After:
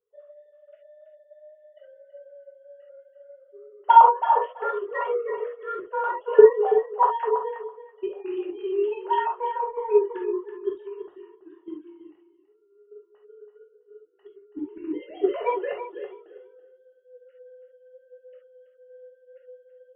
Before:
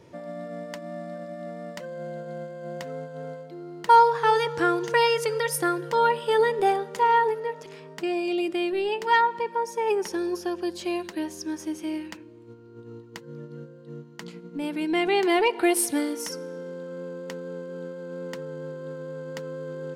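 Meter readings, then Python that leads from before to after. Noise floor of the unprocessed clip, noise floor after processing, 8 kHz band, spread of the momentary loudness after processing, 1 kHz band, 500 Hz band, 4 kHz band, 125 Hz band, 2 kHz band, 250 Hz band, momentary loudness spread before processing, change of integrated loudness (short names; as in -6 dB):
-47 dBFS, -61 dBFS, under -40 dB, 22 LU, +1.0 dB, +2.0 dB, under -15 dB, under -25 dB, -9.0 dB, -8.0 dB, 19 LU, +3.0 dB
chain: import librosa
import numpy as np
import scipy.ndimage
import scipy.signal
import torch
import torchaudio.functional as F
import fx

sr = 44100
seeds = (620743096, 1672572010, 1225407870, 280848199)

p1 = fx.sine_speech(x, sr)
p2 = fx.peak_eq(p1, sr, hz=2100.0, db=-13.0, octaves=0.81)
p3 = fx.notch(p2, sr, hz=2400.0, q=12.0)
p4 = fx.level_steps(p3, sr, step_db=15)
p5 = p3 + (p4 * librosa.db_to_amplitude(2.5))
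p6 = fx.transient(p5, sr, attack_db=8, sustain_db=-4)
p7 = p6 + fx.echo_feedback(p6, sr, ms=330, feedback_pct=17, wet_db=-8.5, dry=0)
p8 = fx.rev_gated(p7, sr, seeds[0], gate_ms=90, shape='flat', drr_db=-2.0)
p9 = fx.band_widen(p8, sr, depth_pct=40)
y = p9 * librosa.db_to_amplitude(-13.0)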